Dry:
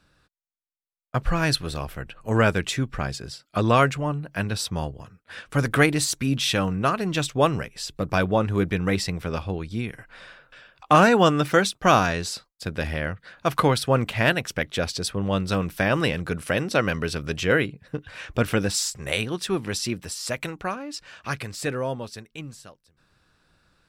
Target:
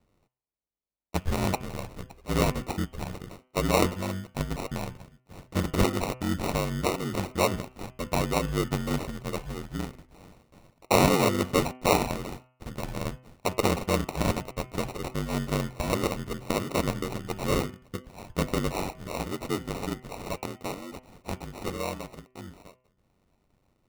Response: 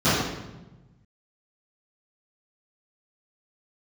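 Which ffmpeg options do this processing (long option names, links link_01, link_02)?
-af "aeval=exprs='val(0)*sin(2*PI*47*n/s)':channel_layout=same,acrusher=samples=27:mix=1:aa=0.000001,bandreject=frequency=127.3:width_type=h:width=4,bandreject=frequency=254.6:width_type=h:width=4,bandreject=frequency=381.9:width_type=h:width=4,bandreject=frequency=509.2:width_type=h:width=4,bandreject=frequency=636.5:width_type=h:width=4,bandreject=frequency=763.8:width_type=h:width=4,bandreject=frequency=891.1:width_type=h:width=4,bandreject=frequency=1018.4:width_type=h:width=4,bandreject=frequency=1145.7:width_type=h:width=4,bandreject=frequency=1273:width_type=h:width=4,bandreject=frequency=1400.3:width_type=h:width=4,bandreject=frequency=1527.6:width_type=h:width=4,bandreject=frequency=1654.9:width_type=h:width=4,bandreject=frequency=1782.2:width_type=h:width=4,bandreject=frequency=1909.5:width_type=h:width=4,bandreject=frequency=2036.8:width_type=h:width=4,bandreject=frequency=2164.1:width_type=h:width=4,bandreject=frequency=2291.4:width_type=h:width=4,bandreject=frequency=2418.7:width_type=h:width=4,bandreject=frequency=2546:width_type=h:width=4,bandreject=frequency=2673.3:width_type=h:width=4,bandreject=frequency=2800.6:width_type=h:width=4,bandreject=frequency=2927.9:width_type=h:width=4,bandreject=frequency=3055.2:width_type=h:width=4,bandreject=frequency=3182.5:width_type=h:width=4,volume=-2dB"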